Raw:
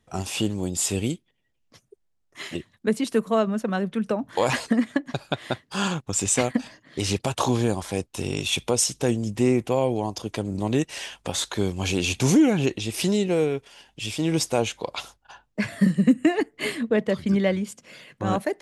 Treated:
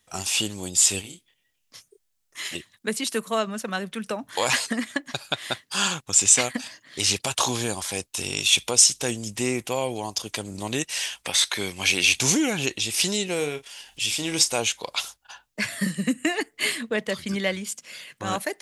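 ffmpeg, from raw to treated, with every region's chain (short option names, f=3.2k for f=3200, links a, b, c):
-filter_complex "[0:a]asettb=1/sr,asplit=3[a][b][c];[a]atrim=end=1.014[d];[b]atrim=start=1.01:end=2.45,asetpts=PTS-STARTPTS,afade=t=in:d=0.004:c=qsin,afade=t=out:st=1.436:d=0.004:c=qsin,acompressor=threshold=-35dB:ratio=6:attack=3.2:release=140:knee=1:detection=peak,asplit=2[e][f];[f]adelay=28,volume=-3.5dB[g];[e][g]amix=inputs=2:normalize=0,atrim=end_sample=63504[h];[c]atrim=start=2.446[i];[d][h]acrossfade=d=0.004:c1=hsin:c2=qsin[j];[j][i]acrossfade=d=0.004:c1=qsin:c2=hsin,asettb=1/sr,asplit=3[k][l][m];[k]atrim=end=11.234[n];[l]atrim=start=11.23:end=12.15,asetpts=PTS-STARTPTS,afade=t=in:d=0.004:c=qsin,afade=t=out:st=0.916:d=0.004:c=qsin,highpass=f=120:p=1,equalizer=f=2.1k:t=o:w=0.49:g=8.5,bandreject=f=7k:w=6.6[o];[m]atrim=start=12.146[p];[n][o]acrossfade=d=0.004:c1=hsin:c2=qsin[q];[q][p]acrossfade=d=0.004:c1=qsin:c2=hsin,asettb=1/sr,asplit=3[r][s][t];[r]atrim=end=13.364[u];[s]atrim=start=13.36:end=14.56,asetpts=PTS-STARTPTS,afade=t=in:d=0.004:c=qsin,afade=t=out:st=1.196:d=0.004:c=qsin,asubboost=boost=3.5:cutoff=76,acompressor=mode=upward:threshold=-43dB:ratio=2.5:attack=3.2:release=140:knee=2.83:detection=peak,asplit=2[v][w];[w]adelay=34,volume=-11.5dB[x];[v][x]amix=inputs=2:normalize=0,atrim=end_sample=52920[y];[t]atrim=start=14.556[z];[u][y]acrossfade=d=0.004:c1=hsin:c2=qsin[aa];[aa][z]acrossfade=d=0.004:c1=qsin:c2=hsin,tiltshelf=f=970:g=-7,acrossover=split=8700[ab][ac];[ac]acompressor=threshold=-40dB:ratio=4:attack=1:release=60[ad];[ab][ad]amix=inputs=2:normalize=0,highshelf=f=6.2k:g=7.5,volume=-1dB"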